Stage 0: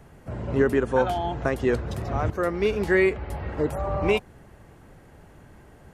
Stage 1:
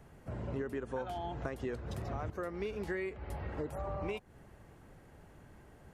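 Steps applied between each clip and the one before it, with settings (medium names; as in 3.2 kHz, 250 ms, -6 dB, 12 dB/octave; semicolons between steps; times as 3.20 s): compression 6:1, threshold -28 dBFS, peak gain reduction 12 dB; trim -7 dB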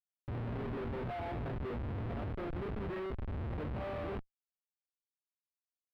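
chord resonator D#2 major, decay 0.31 s; Schmitt trigger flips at -52.5 dBFS; distance through air 480 m; trim +15 dB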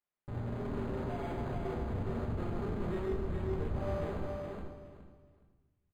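feedback delay 418 ms, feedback 21%, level -4 dB; reverberation RT60 1.1 s, pre-delay 5 ms, DRR 0.5 dB; decimation joined by straight lines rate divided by 8×; trim -2 dB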